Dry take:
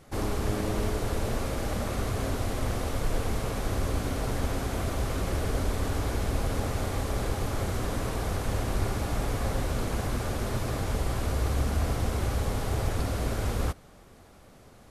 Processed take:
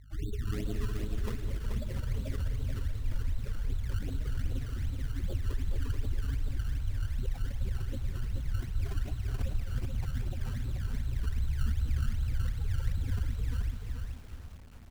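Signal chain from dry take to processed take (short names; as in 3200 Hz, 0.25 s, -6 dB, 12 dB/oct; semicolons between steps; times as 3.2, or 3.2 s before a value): octaver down 2 oct, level -1 dB; feedback echo 0.852 s, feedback 35%, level -17.5 dB; hum 50 Hz, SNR 20 dB; spectral gate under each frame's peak -10 dB strong; 6.56–7.19 inverse Chebyshev low-pass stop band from 860 Hz, stop band 80 dB; decimation with a swept rate 21×, swing 100% 2.6 Hz; outdoor echo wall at 35 m, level -11 dB; lo-fi delay 0.432 s, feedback 35%, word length 8-bit, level -4 dB; gain -5 dB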